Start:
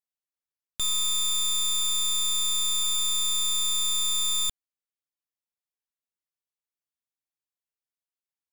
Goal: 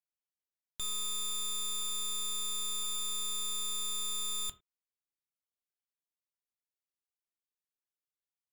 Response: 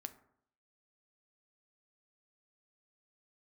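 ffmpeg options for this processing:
-filter_complex "[1:a]atrim=start_sample=2205,afade=t=out:st=0.22:d=0.01,atrim=end_sample=10143,asetrate=70560,aresample=44100[a];[0:a][a]afir=irnorm=-1:irlink=0"

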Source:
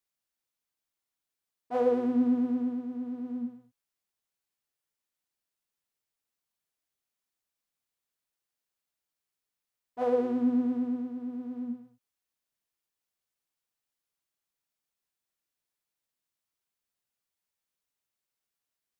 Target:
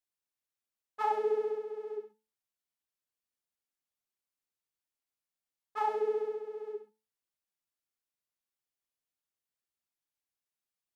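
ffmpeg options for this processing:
-af "bandreject=f=125.6:t=h:w=4,bandreject=f=251.2:t=h:w=4,bandreject=f=376.8:t=h:w=4,bandreject=f=502.4:t=h:w=4,bandreject=f=628:t=h:w=4,bandreject=f=753.6:t=h:w=4,bandreject=f=879.2:t=h:w=4,bandreject=f=1.0048k:t=h:w=4,bandreject=f=1.1304k:t=h:w=4,bandreject=f=1.256k:t=h:w=4,bandreject=f=1.3816k:t=h:w=4,bandreject=f=1.5072k:t=h:w=4,bandreject=f=1.6328k:t=h:w=4,bandreject=f=1.7584k:t=h:w=4,bandreject=f=1.884k:t=h:w=4,bandreject=f=2.0096k:t=h:w=4,bandreject=f=2.1352k:t=h:w=4,bandreject=f=2.2608k:t=h:w=4,bandreject=f=2.3864k:t=h:w=4,bandreject=f=2.512k:t=h:w=4,bandreject=f=2.6376k:t=h:w=4,bandreject=f=2.7632k:t=h:w=4,bandreject=f=2.8888k:t=h:w=4,bandreject=f=3.0144k:t=h:w=4,bandreject=f=3.14k:t=h:w=4,bandreject=f=3.2656k:t=h:w=4,bandreject=f=3.3912k:t=h:w=4,bandreject=f=3.5168k:t=h:w=4,bandreject=f=3.6424k:t=h:w=4,bandreject=f=3.768k:t=h:w=4,bandreject=f=3.8936k:t=h:w=4,bandreject=f=4.0192k:t=h:w=4,bandreject=f=4.1448k:t=h:w=4,bandreject=f=4.2704k:t=h:w=4,asetrate=76440,aresample=44100,volume=-3.5dB"

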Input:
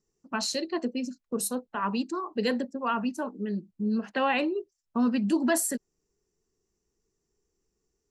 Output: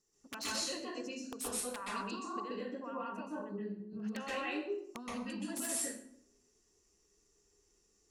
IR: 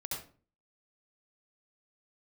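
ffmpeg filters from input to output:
-filter_complex "[0:a]alimiter=limit=-21dB:level=0:latency=1:release=49,acompressor=threshold=-41dB:ratio=12,asetnsamples=n=441:p=0,asendcmd='2.4 equalizer g -12.5;4 equalizer g 5',equalizer=f=10k:t=o:w=2.7:g=4.5,aeval=exprs='(mod(39.8*val(0)+1,2)-1)/39.8':c=same,lowshelf=f=330:g=-9[a];[1:a]atrim=start_sample=2205,asetrate=23373,aresample=44100[b];[a][b]afir=irnorm=-1:irlink=0,volume=1.5dB"

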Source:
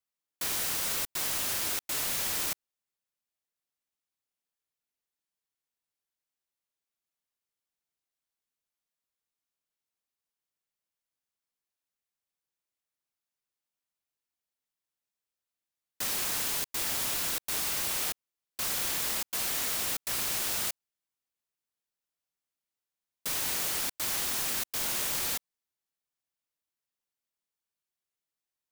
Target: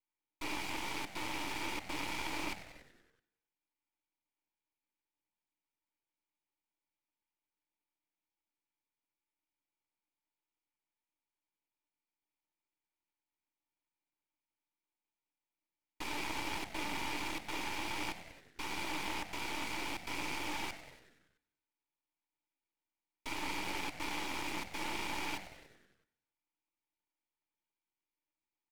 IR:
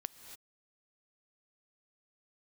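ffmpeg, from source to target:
-filter_complex "[0:a]asplit=3[a][b][c];[a]bandpass=f=300:t=q:w=8,volume=0dB[d];[b]bandpass=f=870:t=q:w=8,volume=-6dB[e];[c]bandpass=f=2.24k:t=q:w=8,volume=-9dB[f];[d][e][f]amix=inputs=3:normalize=0,aecho=1:1:2.1:0.4,asplit=8[g][h][i][j][k][l][m][n];[h]adelay=95,afreqshift=-110,volume=-13dB[o];[i]adelay=190,afreqshift=-220,volume=-17.3dB[p];[j]adelay=285,afreqshift=-330,volume=-21.6dB[q];[k]adelay=380,afreqshift=-440,volume=-25.9dB[r];[l]adelay=475,afreqshift=-550,volume=-30.2dB[s];[m]adelay=570,afreqshift=-660,volume=-34.5dB[t];[n]adelay=665,afreqshift=-770,volume=-38.8dB[u];[g][o][p][q][r][s][t][u]amix=inputs=8:normalize=0,aeval=exprs='max(val(0),0)':c=same,asplit=2[v][w];[1:a]atrim=start_sample=2205[x];[w][x]afir=irnorm=-1:irlink=0,volume=-6dB[y];[v][y]amix=inputs=2:normalize=0,volume=14.5dB"

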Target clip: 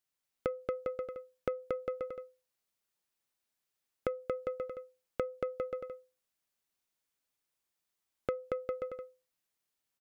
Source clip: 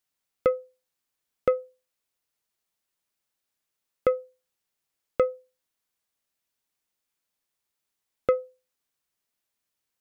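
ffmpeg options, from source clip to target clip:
-af "aecho=1:1:230|402.5|531.9|628.9|701.7:0.631|0.398|0.251|0.158|0.1,acompressor=threshold=-25dB:ratio=10,volume=-5dB"

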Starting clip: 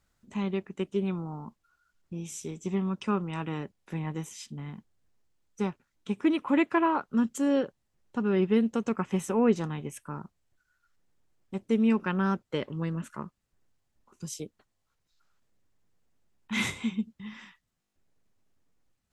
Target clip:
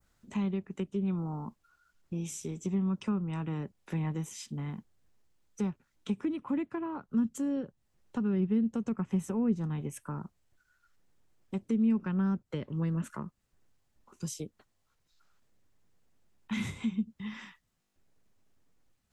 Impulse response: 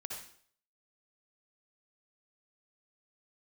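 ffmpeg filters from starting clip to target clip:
-filter_complex "[0:a]acrossover=split=220[a][b];[b]acompressor=threshold=-40dB:ratio=10[c];[a][c]amix=inputs=2:normalize=0,adynamicequalizer=threshold=0.00112:dfrequency=3200:dqfactor=0.7:tfrequency=3200:tqfactor=0.7:attack=5:release=100:ratio=0.375:range=2:mode=cutabove:tftype=bell,volume=2.5dB"

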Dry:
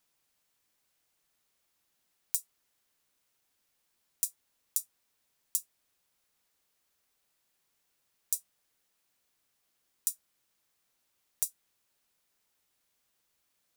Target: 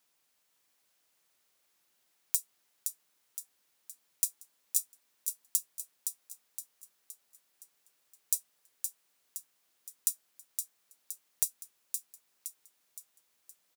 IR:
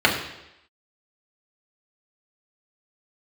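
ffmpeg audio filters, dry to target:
-filter_complex "[0:a]highpass=f=230:p=1,asplit=2[a][b];[b]aecho=0:1:517|1034|1551|2068|2585|3102:0.501|0.236|0.111|0.052|0.0245|0.0115[c];[a][c]amix=inputs=2:normalize=0,volume=2dB"

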